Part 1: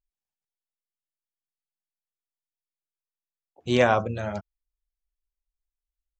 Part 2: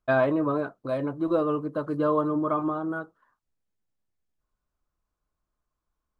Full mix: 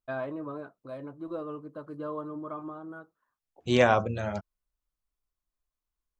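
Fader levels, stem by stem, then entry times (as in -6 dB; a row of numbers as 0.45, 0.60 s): -1.5, -12.0 dB; 0.00, 0.00 s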